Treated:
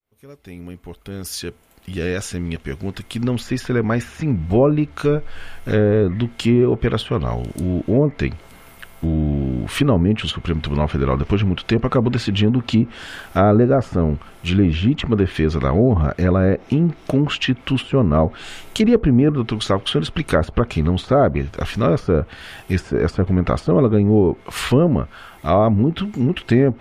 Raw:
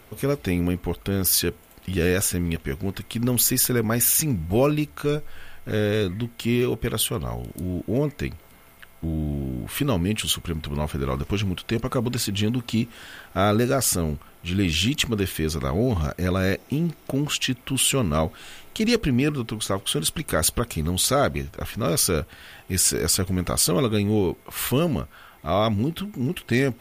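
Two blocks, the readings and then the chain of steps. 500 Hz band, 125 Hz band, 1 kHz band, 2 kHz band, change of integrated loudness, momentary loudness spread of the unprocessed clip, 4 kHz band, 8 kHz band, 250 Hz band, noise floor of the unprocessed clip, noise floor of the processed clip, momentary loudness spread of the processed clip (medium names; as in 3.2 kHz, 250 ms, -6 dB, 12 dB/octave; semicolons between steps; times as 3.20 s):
+6.5 dB, +7.0 dB, +5.5 dB, +2.0 dB, +5.0 dB, 10 LU, -1.0 dB, -14.0 dB, +7.0 dB, -50 dBFS, -45 dBFS, 12 LU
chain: fade-in on the opening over 5.75 s; low-pass that closes with the level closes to 950 Hz, closed at -17.5 dBFS; trim +7.5 dB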